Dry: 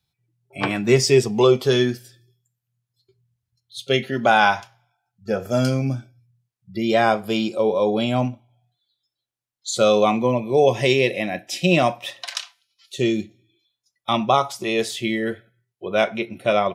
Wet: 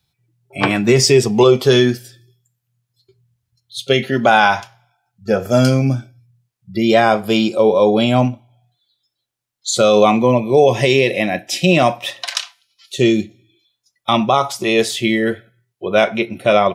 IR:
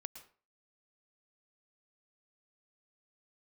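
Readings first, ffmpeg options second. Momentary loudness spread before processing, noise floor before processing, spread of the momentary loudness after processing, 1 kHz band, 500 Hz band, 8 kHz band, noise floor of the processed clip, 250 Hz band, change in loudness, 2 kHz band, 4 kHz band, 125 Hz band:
15 LU, -84 dBFS, 14 LU, +4.5 dB, +5.5 dB, +7.0 dB, -77 dBFS, +6.5 dB, +5.5 dB, +5.0 dB, +6.0 dB, +6.0 dB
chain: -af "alimiter=level_in=8dB:limit=-1dB:release=50:level=0:latency=1,volume=-1dB"

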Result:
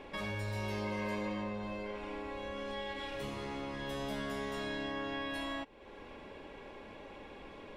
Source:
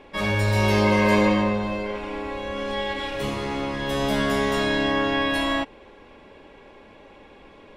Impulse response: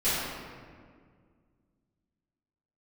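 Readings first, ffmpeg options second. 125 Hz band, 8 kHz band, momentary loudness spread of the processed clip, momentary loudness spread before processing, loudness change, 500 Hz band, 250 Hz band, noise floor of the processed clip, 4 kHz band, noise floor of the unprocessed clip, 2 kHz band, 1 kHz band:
-16.5 dB, -15.5 dB, 13 LU, 11 LU, -16.5 dB, -15.5 dB, -16.0 dB, -51 dBFS, -15.0 dB, -49 dBFS, -15.5 dB, -15.5 dB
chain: -af "acompressor=threshold=-42dB:ratio=2.5,volume=-1.5dB"

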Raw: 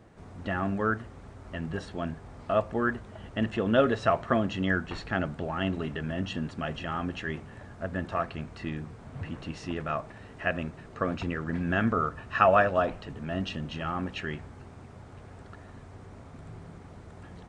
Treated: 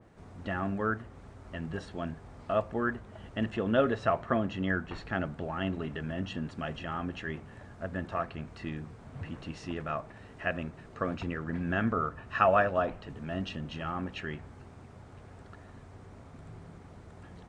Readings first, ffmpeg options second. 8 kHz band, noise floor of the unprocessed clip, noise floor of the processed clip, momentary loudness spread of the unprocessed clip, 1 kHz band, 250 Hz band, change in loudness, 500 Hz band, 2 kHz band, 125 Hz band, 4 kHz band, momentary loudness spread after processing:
n/a, -49 dBFS, -52 dBFS, 22 LU, -3.0 dB, -3.0 dB, -3.0 dB, -3.0 dB, -3.5 dB, -3.0 dB, -4.5 dB, 22 LU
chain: -af "adynamicequalizer=threshold=0.00562:dfrequency=2900:dqfactor=0.7:tfrequency=2900:tqfactor=0.7:attack=5:release=100:ratio=0.375:range=3:mode=cutabove:tftype=highshelf,volume=-3dB"

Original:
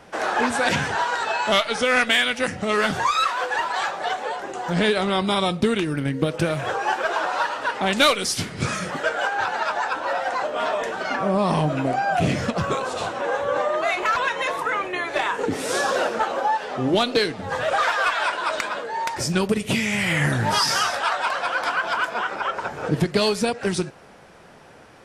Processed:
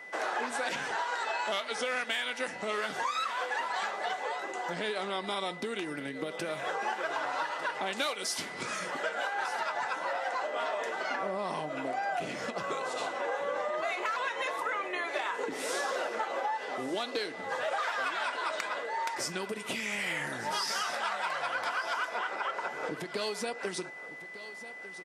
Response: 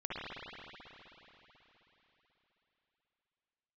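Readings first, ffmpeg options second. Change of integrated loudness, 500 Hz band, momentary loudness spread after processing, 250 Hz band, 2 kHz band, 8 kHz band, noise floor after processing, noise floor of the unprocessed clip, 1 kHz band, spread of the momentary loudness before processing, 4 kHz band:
-11.0 dB, -11.0 dB, 4 LU, -16.5 dB, -9.5 dB, -9.5 dB, -44 dBFS, -47 dBFS, -10.0 dB, 6 LU, -11.5 dB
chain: -af "aeval=exprs='val(0)+0.0126*sin(2*PI*2000*n/s)':c=same,acompressor=threshold=-23dB:ratio=6,highpass=320,aecho=1:1:1199:0.178,volume=-6dB"

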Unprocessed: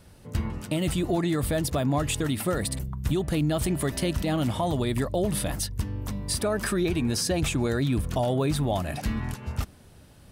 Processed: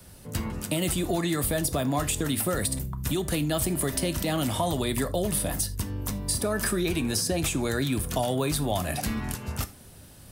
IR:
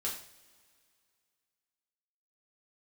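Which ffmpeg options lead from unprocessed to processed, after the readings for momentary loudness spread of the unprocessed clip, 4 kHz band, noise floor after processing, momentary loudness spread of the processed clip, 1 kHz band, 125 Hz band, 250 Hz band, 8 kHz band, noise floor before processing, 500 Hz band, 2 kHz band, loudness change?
7 LU, +1.5 dB, -49 dBFS, 6 LU, 0.0 dB, -2.5 dB, -1.5 dB, +4.5 dB, -51 dBFS, -1.0 dB, +1.0 dB, -0.5 dB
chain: -filter_complex "[0:a]highshelf=f=6.8k:g=12,asplit=2[a][b];[1:a]atrim=start_sample=2205,afade=t=out:st=0.17:d=0.01,atrim=end_sample=7938,asetrate=57330,aresample=44100[c];[b][c]afir=irnorm=-1:irlink=0,volume=-8dB[d];[a][d]amix=inputs=2:normalize=0,acrossover=split=91|240|960[e][f][g][h];[e]acompressor=threshold=-34dB:ratio=4[i];[f]acompressor=threshold=-34dB:ratio=4[j];[g]acompressor=threshold=-27dB:ratio=4[k];[h]acompressor=threshold=-27dB:ratio=4[l];[i][j][k][l]amix=inputs=4:normalize=0"

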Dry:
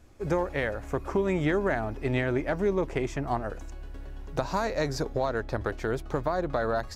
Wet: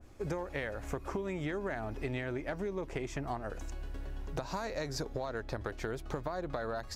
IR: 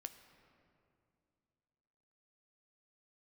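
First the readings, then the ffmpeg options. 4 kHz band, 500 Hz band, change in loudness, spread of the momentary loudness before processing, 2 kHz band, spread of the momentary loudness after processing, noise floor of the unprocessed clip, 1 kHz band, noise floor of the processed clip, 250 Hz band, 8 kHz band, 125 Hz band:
-4.5 dB, -9.5 dB, -9.0 dB, 8 LU, -8.0 dB, 5 LU, -40 dBFS, -9.0 dB, -46 dBFS, -9.0 dB, -3.0 dB, -8.0 dB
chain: -af "acompressor=threshold=-34dB:ratio=6,adynamicequalizer=threshold=0.00251:dfrequency=1900:dqfactor=0.7:tfrequency=1900:tqfactor=0.7:attack=5:release=100:ratio=0.375:range=1.5:mode=boostabove:tftype=highshelf"

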